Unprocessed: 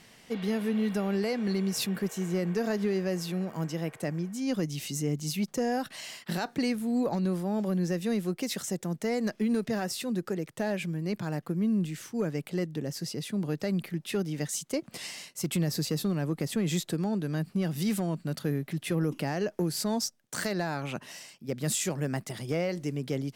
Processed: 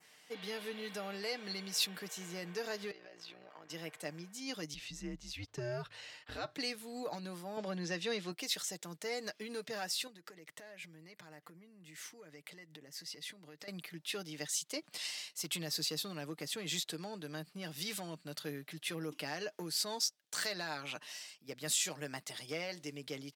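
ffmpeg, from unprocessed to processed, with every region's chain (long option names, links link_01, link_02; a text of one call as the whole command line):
ffmpeg -i in.wav -filter_complex "[0:a]asettb=1/sr,asplit=3[link_01][link_02][link_03];[link_01]atrim=end=2.914[link_04];[link_02]atrim=start=2.91:end=3.7,asetpts=PTS-STARTPTS,afade=type=in:duration=0.004:curve=qsin,afade=type=out:start_time=0.786:duration=0.004:curve=qsin,acrossover=split=300 4900:gain=0.2 1 0.0891[link_05][link_06][link_07];[link_05][link_06][link_07]amix=inputs=3:normalize=0,acompressor=threshold=-36dB:ratio=12:attack=3.2:release=140:knee=1:detection=peak,tremolo=f=59:d=0.919[link_08];[link_03]atrim=start=3.696[link_09];[link_04][link_08]acrossfade=duration=0.004:curve1=hsin:curve2=qsin[link_10];[link_10][link_09]acrossfade=duration=0.004:curve1=qsin:curve2=hsin,asettb=1/sr,asplit=3[link_11][link_12][link_13];[link_11]atrim=end=4.744[link_14];[link_12]atrim=start=4.74:end=6.55,asetpts=PTS-STARTPTS,afade=type=in:duration=0.004:curve=qsin,afade=type=out:start_time=1.806:duration=0.004:curve=qsin,aemphasis=mode=reproduction:type=riaa,afreqshift=-110[link_15];[link_13]atrim=start=6.546[link_16];[link_14][link_15]acrossfade=duration=0.004:curve1=hsin:curve2=qsin[link_17];[link_17][link_16]acrossfade=duration=0.004:curve1=qsin:curve2=hsin,asettb=1/sr,asplit=3[link_18][link_19][link_20];[link_18]atrim=end=7.574[link_21];[link_19]atrim=start=7.57:end=8.32,asetpts=PTS-STARTPTS,afade=type=in:duration=0.004:curve=qsin,afade=type=out:start_time=0.746:duration=0.004:curve=qsin,acontrast=24,highpass=110,lowpass=5600[link_22];[link_20]atrim=start=8.316[link_23];[link_21][link_22]acrossfade=duration=0.004:curve1=hsin:curve2=qsin[link_24];[link_24][link_23]acrossfade=duration=0.004:curve1=qsin:curve2=hsin,asettb=1/sr,asplit=3[link_25][link_26][link_27];[link_25]atrim=end=10.074[link_28];[link_26]atrim=start=10.07:end=13.68,asetpts=PTS-STARTPTS,afade=type=in:duration=0.004:curve=qsin,afade=type=out:start_time=3.606:duration=0.004:curve=qsin,acompressor=threshold=-38dB:ratio=16:attack=3.2:release=140:knee=1:detection=peak,equalizer=frequency=2000:width_type=o:width=0.22:gain=8[link_29];[link_27]atrim=start=13.676[link_30];[link_28][link_29]acrossfade=duration=0.004:curve1=hsin:curve2=qsin[link_31];[link_31][link_30]acrossfade=duration=0.004:curve1=qsin:curve2=hsin,highpass=frequency=840:poles=1,aecho=1:1:6.6:0.44,adynamicequalizer=threshold=0.00282:dfrequency=3900:dqfactor=1.1:tfrequency=3900:tqfactor=1.1:attack=5:release=100:ratio=0.375:range=3.5:mode=boostabove:tftype=bell,volume=-5.5dB" out.wav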